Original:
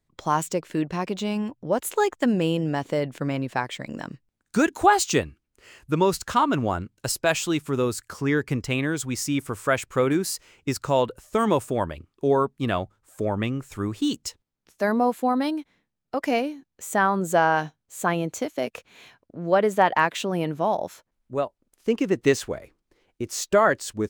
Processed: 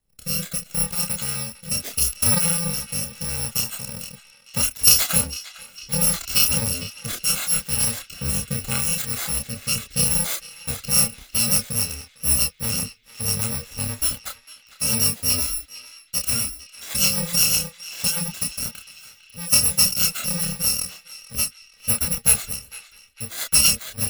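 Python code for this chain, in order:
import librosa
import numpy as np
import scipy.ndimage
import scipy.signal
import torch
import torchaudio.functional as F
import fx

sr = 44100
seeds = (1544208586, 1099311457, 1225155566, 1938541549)

y = fx.bit_reversed(x, sr, seeds[0], block=128)
y = fx.rotary_switch(y, sr, hz=0.75, then_hz=8.0, switch_at_s=10.62)
y = fx.chorus_voices(y, sr, voices=6, hz=0.14, base_ms=29, depth_ms=3.1, mix_pct=40)
y = fx.echo_banded(y, sr, ms=453, feedback_pct=63, hz=2700.0, wet_db=-13.0)
y = y * librosa.db_to_amplitude(7.5)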